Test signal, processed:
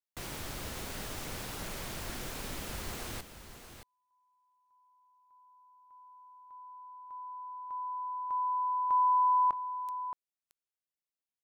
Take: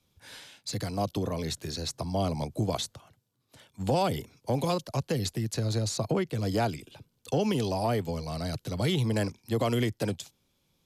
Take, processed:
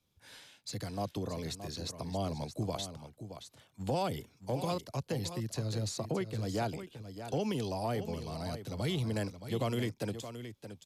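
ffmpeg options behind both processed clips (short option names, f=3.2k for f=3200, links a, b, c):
-af "aecho=1:1:622:0.299,volume=-6.5dB"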